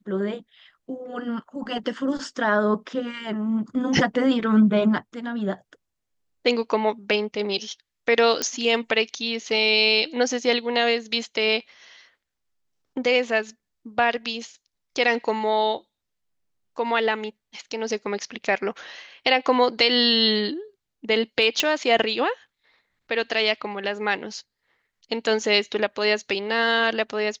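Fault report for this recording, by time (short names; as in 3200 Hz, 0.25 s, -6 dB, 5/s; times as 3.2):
8.42 pop -8 dBFS
21.6 pop -5 dBFS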